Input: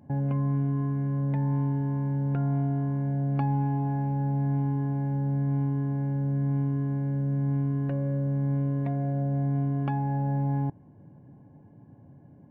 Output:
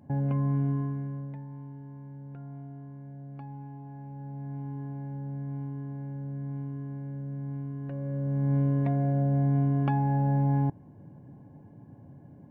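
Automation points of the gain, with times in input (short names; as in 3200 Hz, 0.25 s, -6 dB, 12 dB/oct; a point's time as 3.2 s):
0.71 s -0.5 dB
1.17 s -8.5 dB
1.47 s -16 dB
3.85 s -16 dB
4.79 s -9 dB
7.79 s -9 dB
8.57 s +2 dB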